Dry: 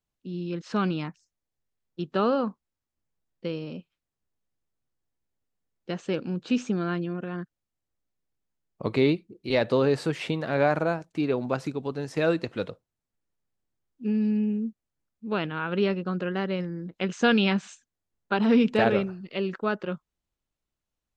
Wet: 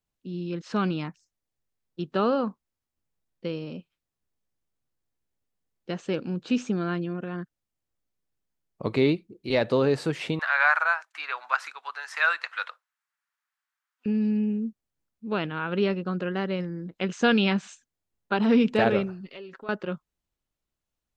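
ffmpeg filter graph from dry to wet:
ffmpeg -i in.wav -filter_complex "[0:a]asettb=1/sr,asplit=3[link_01][link_02][link_03];[link_01]atrim=end=10.394[link_04];[link_02]atrim=start=10.39:end=14.06,asetpts=PTS-STARTPTS,afade=type=in:duration=0.004:curve=qsin,afade=type=out:start_time=3.666:duration=0.004:curve=qsin,highpass=frequency=940:width=0.5412,highpass=frequency=940:width=1.3066,equalizer=frequency=1500:width_type=o:width=1.5:gain=12.5[link_05];[link_03]atrim=start=14.056[link_06];[link_04][link_05]acrossfade=duration=0.004:curve1=hsin:curve2=qsin[link_07];[link_07][link_06]acrossfade=duration=0.004:curve1=qsin:curve2=hsin,asettb=1/sr,asplit=3[link_08][link_09][link_10];[link_08]atrim=end=19.264[link_11];[link_09]atrim=start=19.26:end=19.69,asetpts=PTS-STARTPTS,afade=type=in:duration=0.004:curve=qsin,afade=type=out:start_time=0.426:duration=0.004:curve=qsin,aecho=1:1:7.4:0.37,atrim=end_sample=18963,acompressor=threshold=-42dB:ratio=2.5:attack=3.2:release=140:knee=1:detection=peak,equalizer=frequency=94:width_type=o:width=2.8:gain=-8[link_12];[link_10]atrim=start=19.686[link_13];[link_11][link_12]acrossfade=duration=0.004:curve1=hsin:curve2=qsin[link_14];[link_14][link_13]acrossfade=duration=0.004:curve1=qsin:curve2=hsin" out.wav

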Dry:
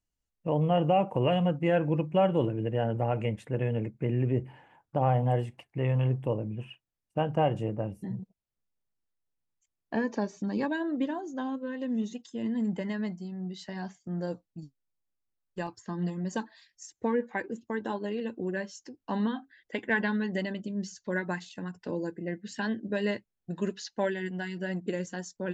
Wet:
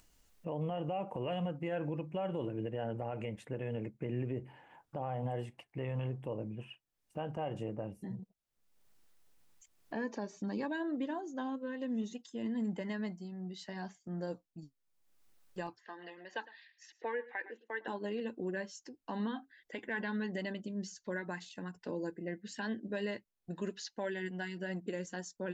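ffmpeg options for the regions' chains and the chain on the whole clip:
ffmpeg -i in.wav -filter_complex "[0:a]asettb=1/sr,asplit=3[link_01][link_02][link_03];[link_01]atrim=end=15.774[link_04];[link_02]atrim=start=15.77:end=17.88,asetpts=PTS-STARTPTS,afade=type=in:duration=0.004:curve=qsin,afade=type=out:start_time=2.106:duration=0.004:curve=qsin,highpass=frequency=380:width=0.5412,highpass=frequency=380:width=1.3066,equalizer=frequency=380:width_type=q:width=4:gain=-6,equalizer=frequency=570:width_type=q:width=4:gain=-4,equalizer=frequency=1100:width_type=q:width=4:gain=-5,equalizer=frequency=1800:width_type=q:width=4:gain=7,equalizer=frequency=2700:width_type=q:width=4:gain=5,lowpass=frequency=4000:width=0.5412,lowpass=frequency=4000:width=1.3066,aecho=1:1:109:0.106,atrim=end_sample=93051[link_05];[link_03]atrim=start=17.876[link_06];[link_04][link_05]acrossfade=duration=0.004:curve1=hsin:curve2=qsin[link_07];[link_07][link_06]acrossfade=duration=0.004:curve1=qsin:curve2=hsin,equalizer=frequency=86:width_type=o:width=2.3:gain=-5.5,alimiter=level_in=0.5dB:limit=-24dB:level=0:latency=1:release=93,volume=-0.5dB,acompressor=mode=upward:threshold=-44dB:ratio=2.5,volume=-3.5dB" out.wav

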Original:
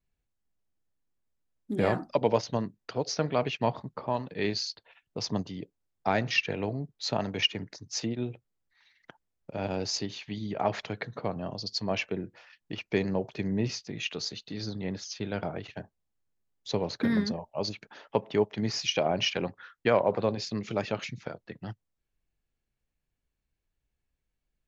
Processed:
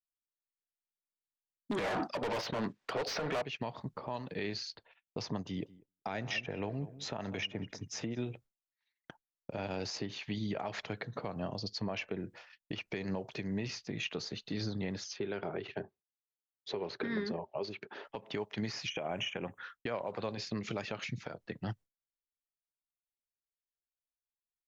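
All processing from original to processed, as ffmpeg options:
ffmpeg -i in.wav -filter_complex "[0:a]asettb=1/sr,asplit=3[link_01][link_02][link_03];[link_01]atrim=end=1.714[link_04];[link_02]atrim=start=1.71:end=3.42,asetpts=PTS-STARTPTS,afade=type=in:duration=0.004:curve=qsin,afade=type=out:start_time=1.706:duration=0.004:curve=qsin,lowpass=6400,agate=range=-11dB:threshold=-49dB:ratio=16:release=100:detection=peak,asplit=2[link_05][link_06];[link_06]highpass=frequency=720:poles=1,volume=32dB,asoftclip=type=tanh:threshold=-10.5dB[link_07];[link_05][link_07]amix=inputs=2:normalize=0,lowpass=frequency=3500:poles=1,volume=-6dB[link_08];[link_03]atrim=start=3.416[link_09];[link_04][link_08]acrossfade=duration=0.004:curve1=hsin:curve2=qsin[link_10];[link_10][link_09]acrossfade=duration=0.004:curve1=qsin:curve2=hsin,asettb=1/sr,asplit=3[link_11][link_12][link_13];[link_11]atrim=end=5.414[link_14];[link_12]atrim=start=5.41:end=8.28,asetpts=PTS-STARTPTS,afade=type=in:duration=0.004:curve=qsin,afade=type=out:start_time=2.866:duration=0.004:curve=qsin,bandreject=frequency=4400:width=5.6,asplit=2[link_15][link_16];[link_16]adelay=194,lowpass=frequency=1400:poles=1,volume=-20dB,asplit=2[link_17][link_18];[link_18]adelay=194,lowpass=frequency=1400:poles=1,volume=0.29[link_19];[link_15][link_17][link_19]amix=inputs=3:normalize=0,atrim=end_sample=126567[link_20];[link_13]atrim=start=8.276[link_21];[link_14][link_20]acrossfade=duration=0.004:curve1=hsin:curve2=qsin[link_22];[link_22][link_21]acrossfade=duration=0.004:curve1=qsin:curve2=hsin,asettb=1/sr,asplit=3[link_23][link_24][link_25];[link_23]atrim=end=15.164[link_26];[link_24]atrim=start=15.16:end=18.05,asetpts=PTS-STARTPTS,afade=type=in:duration=0.004:curve=qsin,afade=type=out:start_time=2.886:duration=0.004:curve=qsin,highpass=110,lowpass=3600,equalizer=frequency=390:width=4.7:gain=13[link_27];[link_25]atrim=start=18.046[link_28];[link_26][link_27]acrossfade=duration=0.004:curve1=hsin:curve2=qsin[link_29];[link_29][link_28]acrossfade=duration=0.004:curve1=qsin:curve2=hsin,asettb=1/sr,asplit=3[link_30][link_31][link_32];[link_30]atrim=end=18.904[link_33];[link_31]atrim=start=18.9:end=19.59,asetpts=PTS-STARTPTS,afade=type=in:duration=0.004:curve=qsin,afade=type=out:start_time=0.686:duration=0.004:curve=qsin,asuperstop=centerf=4500:order=8:qfactor=1.7,highshelf=frequency=2800:gain=9.5[link_34];[link_32]atrim=start=19.586[link_35];[link_33][link_34]acrossfade=duration=0.004:curve1=hsin:curve2=qsin[link_36];[link_36][link_35]acrossfade=duration=0.004:curve1=qsin:curve2=hsin,agate=range=-33dB:threshold=-49dB:ratio=3:detection=peak,acrossover=split=1000|2600[link_37][link_38][link_39];[link_37]acompressor=threshold=-34dB:ratio=4[link_40];[link_38]acompressor=threshold=-40dB:ratio=4[link_41];[link_39]acompressor=threshold=-46dB:ratio=4[link_42];[link_40][link_41][link_42]amix=inputs=3:normalize=0,alimiter=level_in=4dB:limit=-24dB:level=0:latency=1:release=176,volume=-4dB,volume=2dB" out.wav

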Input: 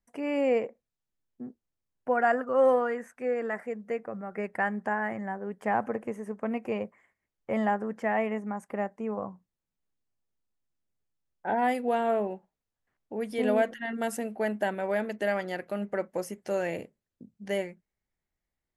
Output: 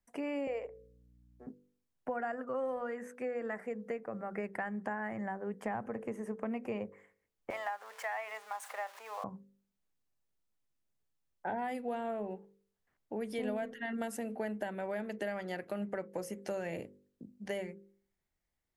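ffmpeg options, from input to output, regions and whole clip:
ffmpeg -i in.wav -filter_complex "[0:a]asettb=1/sr,asplit=3[link_01][link_02][link_03];[link_01]atrim=end=0.474[link_04];[link_02]atrim=start=0.47:end=1.47,asetpts=PTS-STARTPTS,afade=type=in:duration=0.004:curve=qsin,afade=type=out:start_time=0.996:duration=0.004:curve=qsin,highpass=frequency=420:width=0.5412,highpass=frequency=420:width=1.3066,aeval=exprs='val(0)+0.000794*(sin(2*PI*60*n/s)+sin(2*PI*2*60*n/s)/2+sin(2*PI*3*60*n/s)/3+sin(2*PI*4*60*n/s)/4+sin(2*PI*5*60*n/s)/5)':channel_layout=same[link_05];[link_03]atrim=start=1.466[link_06];[link_04][link_05]acrossfade=duration=0.004:curve1=hsin:curve2=qsin[link_07];[link_07][link_06]acrossfade=duration=0.004:curve1=qsin:curve2=hsin,asettb=1/sr,asplit=3[link_08][link_09][link_10];[link_08]atrim=end=7.504[link_11];[link_09]atrim=start=7.5:end=9.24,asetpts=PTS-STARTPTS,afade=type=in:duration=0.004:curve=qsin,afade=type=out:start_time=1.736:duration=0.004:curve=qsin,aeval=exprs='val(0)+0.5*0.00668*sgn(val(0))':channel_layout=same,highpass=frequency=750:width=0.5412,highpass=frequency=750:width=1.3066[link_12];[link_10]atrim=start=9.236[link_13];[link_11][link_12]acrossfade=duration=0.004:curve1=hsin:curve2=qsin[link_14];[link_14][link_13]acrossfade=duration=0.004:curve1=qsin:curve2=hsin,bandreject=frequency=49.18:width_type=h:width=4,bandreject=frequency=98.36:width_type=h:width=4,bandreject=frequency=147.54:width_type=h:width=4,bandreject=frequency=196.72:width_type=h:width=4,bandreject=frequency=245.9:width_type=h:width=4,bandreject=frequency=295.08:width_type=h:width=4,bandreject=frequency=344.26:width_type=h:width=4,bandreject=frequency=393.44:width_type=h:width=4,bandreject=frequency=442.62:width_type=h:width=4,bandreject=frequency=491.8:width_type=h:width=4,bandreject=frequency=540.98:width_type=h:width=4,acrossover=split=150[link_15][link_16];[link_16]acompressor=threshold=-35dB:ratio=6[link_17];[link_15][link_17]amix=inputs=2:normalize=0" out.wav

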